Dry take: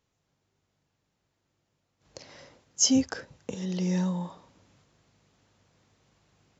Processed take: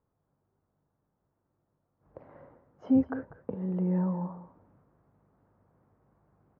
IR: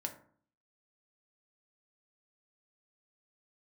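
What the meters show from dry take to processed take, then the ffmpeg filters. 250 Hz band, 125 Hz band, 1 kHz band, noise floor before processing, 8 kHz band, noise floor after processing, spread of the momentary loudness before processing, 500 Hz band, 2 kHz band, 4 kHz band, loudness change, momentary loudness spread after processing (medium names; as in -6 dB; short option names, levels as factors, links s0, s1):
0.0 dB, -0.5 dB, -0.5 dB, -78 dBFS, no reading, -80 dBFS, 18 LU, 0.0 dB, -8.5 dB, under -35 dB, -2.5 dB, 14 LU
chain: -filter_complex "[0:a]lowpass=f=1300:w=0.5412,lowpass=f=1300:w=1.3066,asplit=2[s0][s1];[s1]aecho=0:1:195:0.178[s2];[s0][s2]amix=inputs=2:normalize=0"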